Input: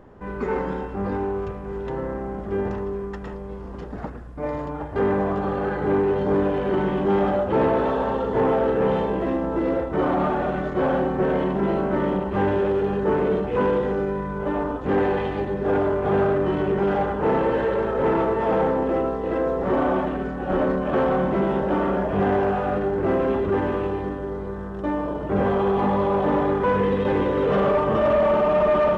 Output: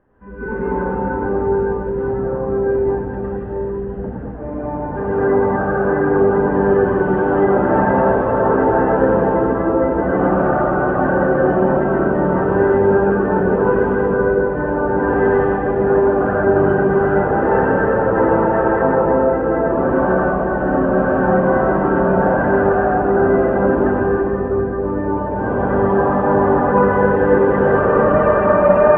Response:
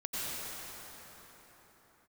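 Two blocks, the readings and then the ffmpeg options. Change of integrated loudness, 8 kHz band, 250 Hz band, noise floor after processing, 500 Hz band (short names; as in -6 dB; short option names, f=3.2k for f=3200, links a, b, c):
+7.0 dB, n/a, +6.5 dB, -24 dBFS, +7.0 dB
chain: -filter_complex "[0:a]asplit=2[a][b];[b]asoftclip=type=hard:threshold=-22.5dB,volume=-6.5dB[c];[a][c]amix=inputs=2:normalize=0[d];[1:a]atrim=start_sample=2205[e];[d][e]afir=irnorm=-1:irlink=0,afftdn=nr=12:nf=-22,lowpass=f=2.8k:w=0.5412,lowpass=f=2.8k:w=1.3066,equalizer=f=1.6k:t=o:w=0.26:g=8,bandreject=f=2.2k:w=20,volume=-1.5dB"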